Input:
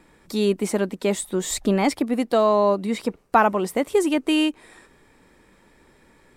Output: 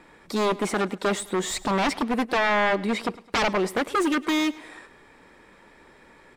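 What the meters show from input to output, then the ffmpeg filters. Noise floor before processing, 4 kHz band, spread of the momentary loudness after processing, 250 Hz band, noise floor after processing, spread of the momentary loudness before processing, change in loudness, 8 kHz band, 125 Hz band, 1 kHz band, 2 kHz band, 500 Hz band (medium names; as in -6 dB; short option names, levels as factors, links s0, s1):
-57 dBFS, +0.5 dB, 6 LU, -3.5 dB, -54 dBFS, 7 LU, -3.0 dB, -3.0 dB, no reading, -2.0 dB, +4.0 dB, -5.0 dB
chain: -filter_complex "[0:a]aeval=exprs='0.119*(abs(mod(val(0)/0.119+3,4)-2)-1)':c=same,asplit=2[s0][s1];[s1]highpass=f=720:p=1,volume=2.51,asoftclip=type=tanh:threshold=0.126[s2];[s0][s2]amix=inputs=2:normalize=0,lowpass=f=2500:p=1,volume=0.501,aecho=1:1:105|210|315:0.1|0.043|0.0185,volume=1.41"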